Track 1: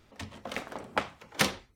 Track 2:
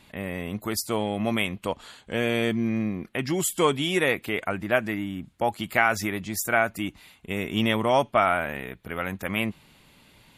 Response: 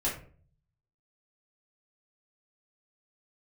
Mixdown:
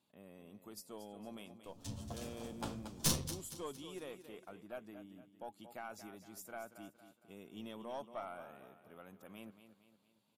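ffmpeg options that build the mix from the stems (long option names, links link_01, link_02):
-filter_complex "[0:a]bass=frequency=250:gain=13,treble=frequency=4000:gain=15,asplit=2[link_01][link_02];[link_02]adelay=9.1,afreqshift=1.3[link_03];[link_01][link_03]amix=inputs=2:normalize=1,adelay=1650,volume=-1.5dB,asplit=3[link_04][link_05][link_06];[link_05]volume=-15.5dB[link_07];[link_06]volume=-17dB[link_08];[1:a]highpass=160,volume=-19dB,asplit=3[link_09][link_10][link_11];[link_10]volume=-11.5dB[link_12];[link_11]apad=whole_len=150522[link_13];[link_04][link_13]sidechaincompress=threshold=-54dB:ratio=8:attack=27:release=412[link_14];[2:a]atrim=start_sample=2205[link_15];[link_07][link_15]afir=irnorm=-1:irlink=0[link_16];[link_08][link_12]amix=inputs=2:normalize=0,aecho=0:1:230|460|690|920|1150|1380:1|0.44|0.194|0.0852|0.0375|0.0165[link_17];[link_14][link_09][link_16][link_17]amix=inputs=4:normalize=0,equalizer=frequency=2000:width_type=o:width=0.77:gain=-13.5,aeval=exprs='(tanh(15.8*val(0)+0.6)-tanh(0.6))/15.8':channel_layout=same"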